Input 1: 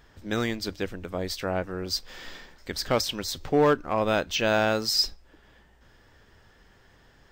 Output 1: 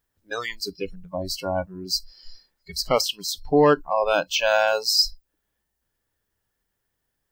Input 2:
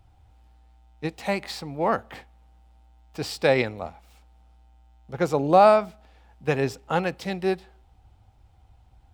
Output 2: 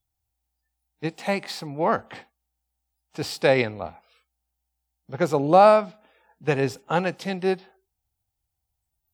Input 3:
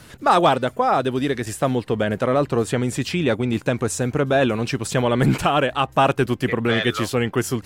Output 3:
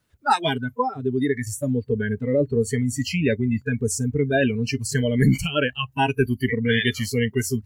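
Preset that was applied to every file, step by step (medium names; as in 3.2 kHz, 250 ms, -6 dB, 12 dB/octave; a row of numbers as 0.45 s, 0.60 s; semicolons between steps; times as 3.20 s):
added noise blue -58 dBFS; spectral noise reduction 28 dB; normalise loudness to -23 LUFS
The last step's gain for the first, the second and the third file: +4.5 dB, +1.0 dB, +1.0 dB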